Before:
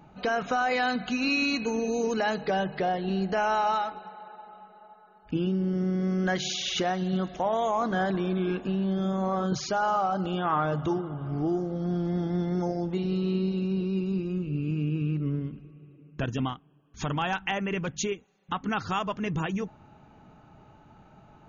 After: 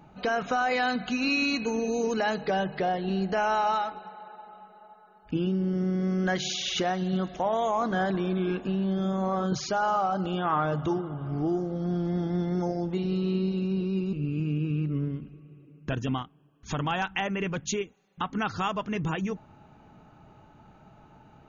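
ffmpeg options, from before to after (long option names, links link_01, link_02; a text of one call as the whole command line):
ffmpeg -i in.wav -filter_complex "[0:a]asplit=2[link_01][link_02];[link_01]atrim=end=14.132[link_03];[link_02]atrim=start=14.438[link_04];[link_03][link_04]acrossfade=duration=0.004:curve1=hsin:curve2=hsin" out.wav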